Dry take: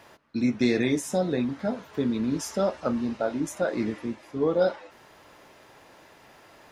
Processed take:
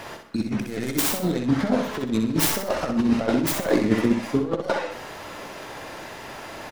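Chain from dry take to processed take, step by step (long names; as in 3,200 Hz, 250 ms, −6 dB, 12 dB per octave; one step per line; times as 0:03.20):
stylus tracing distortion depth 0.43 ms
compressor whose output falls as the input rises −31 dBFS, ratio −0.5
repeating echo 63 ms, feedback 34%, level −6 dB
level +8.5 dB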